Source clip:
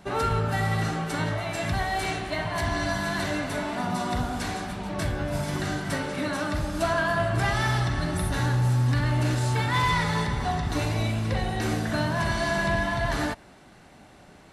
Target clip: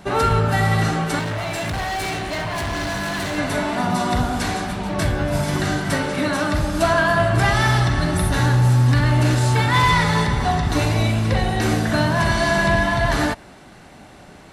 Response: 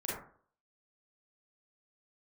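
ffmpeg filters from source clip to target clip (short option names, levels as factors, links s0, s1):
-filter_complex "[0:a]asettb=1/sr,asplit=3[s0][s1][s2];[s0]atrim=end=1.194[s3];[s1]atrim=start=1.19:end=3.38,asetpts=PTS-STARTPTS,afade=t=in:d=0.004:c=qsin,afade=t=out:st=2.186:d=0.004:c=qsin,volume=31.6,asoftclip=hard,volume=0.0316[s4];[s2]atrim=start=3.376[s5];[s3][s4]acrossfade=d=0.004:c1=hsin:c2=qsin[s6];[s6][s5]acrossfade=d=0.004:c1=qsin:c2=hsin,volume=2.37"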